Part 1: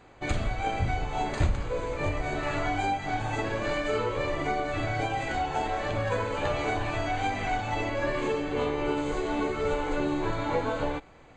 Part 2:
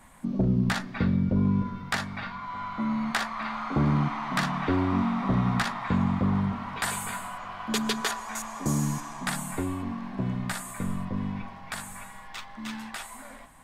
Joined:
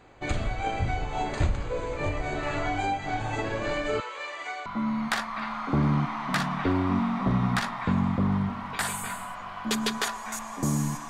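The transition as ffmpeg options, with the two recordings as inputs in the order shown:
-filter_complex "[0:a]asettb=1/sr,asplit=3[a][b][c];[a]atrim=end=4.004[d];[b]atrim=start=4:end=4.66,asetpts=PTS-STARTPTS,afade=t=in:d=0.004:c=qsin,afade=t=out:st=0.656:d=0.004:c=qsin,highpass=1.1k[e];[c]atrim=start=4.656[f];[d][e]acrossfade=d=0.004:c1=hsin:c2=qsin[g];[g][f]acrossfade=d=0.004:c1=qsin:c2=hsin,apad=whole_dur=11.09,atrim=end=11.09,atrim=end=4.662[h];[1:a]atrim=start=2.688:end=9.12[i];[h][i]acrossfade=d=0.004:c1=hsin:c2=hsin"

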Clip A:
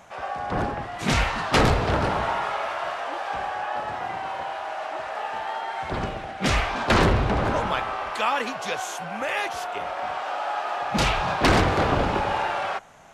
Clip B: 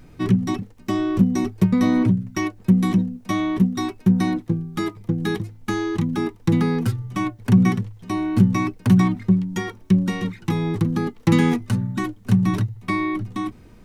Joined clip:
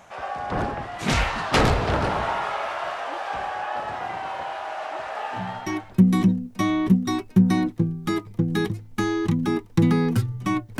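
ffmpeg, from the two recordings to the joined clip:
-filter_complex "[0:a]apad=whole_dur=10.79,atrim=end=10.79,atrim=end=5.99,asetpts=PTS-STARTPTS[a];[1:a]atrim=start=2.01:end=7.49,asetpts=PTS-STARTPTS[b];[a][b]acrossfade=d=0.68:c1=tri:c2=tri"

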